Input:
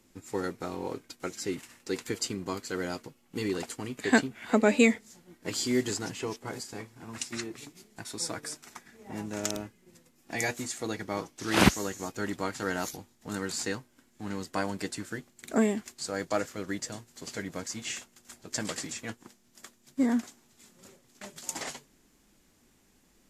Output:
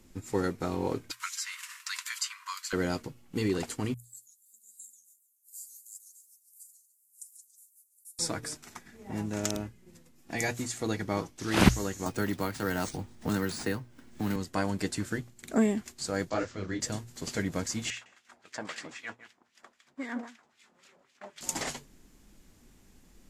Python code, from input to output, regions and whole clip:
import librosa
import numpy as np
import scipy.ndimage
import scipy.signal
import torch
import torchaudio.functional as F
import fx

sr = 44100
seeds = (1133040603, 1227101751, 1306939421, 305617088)

y = fx.chain(x, sr, fx.brickwall_highpass(low_hz=940.0),
    fx.band_squash(depth_pct=70), at=(1.11, 2.73))
y = fx.chain(y, sr, fx.cheby2_highpass(hz=2600.0, order=4, stop_db=70),
    fx.echo_warbled(ms=143, feedback_pct=33, rate_hz=2.8, cents=219, wet_db=-11), at=(3.94, 8.19))
y = fx.chain(y, sr, fx.resample_bad(factor=3, down='filtered', up='hold'),
    fx.band_squash(depth_pct=70), at=(12.06, 14.36))
y = fx.chain(y, sr, fx.lowpass(hz=6400.0, slope=24),
    fx.detune_double(cents=48), at=(16.3, 16.81))
y = fx.chain(y, sr, fx.echo_single(ms=157, db=-12.0),
    fx.filter_lfo_bandpass(shape='sine', hz=3.8, low_hz=730.0, high_hz=2800.0, q=1.4), at=(17.9, 21.41))
y = fx.hum_notches(y, sr, base_hz=60, count=2)
y = fx.rider(y, sr, range_db=3, speed_s=0.5)
y = fx.low_shelf(y, sr, hz=140.0, db=11.5)